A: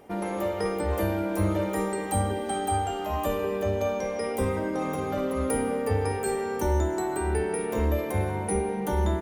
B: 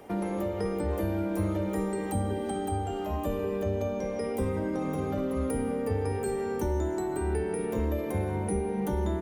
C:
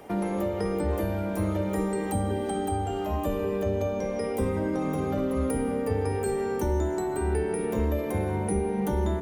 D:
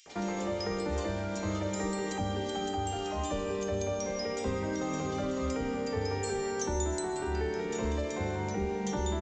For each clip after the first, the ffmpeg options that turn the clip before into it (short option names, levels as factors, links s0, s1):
-filter_complex "[0:a]acrossover=split=170|450[s0][s1][s2];[s0]acompressor=threshold=0.02:ratio=4[s3];[s1]acompressor=threshold=0.02:ratio=4[s4];[s2]acompressor=threshold=0.00794:ratio=4[s5];[s3][s4][s5]amix=inputs=3:normalize=0,volume=1.41"
-af "bandreject=f=46.99:t=h:w=4,bandreject=f=93.98:t=h:w=4,bandreject=f=140.97:t=h:w=4,bandreject=f=187.96:t=h:w=4,bandreject=f=234.95:t=h:w=4,bandreject=f=281.94:t=h:w=4,bandreject=f=328.93:t=h:w=4,bandreject=f=375.92:t=h:w=4,bandreject=f=422.91:t=h:w=4,bandreject=f=469.9:t=h:w=4,bandreject=f=516.89:t=h:w=4,bandreject=f=563.88:t=h:w=4,volume=1.41"
-filter_complex "[0:a]crystalizer=i=8.5:c=0,aresample=16000,aresample=44100,acrossover=split=2700[s0][s1];[s0]adelay=60[s2];[s2][s1]amix=inputs=2:normalize=0,volume=0.473"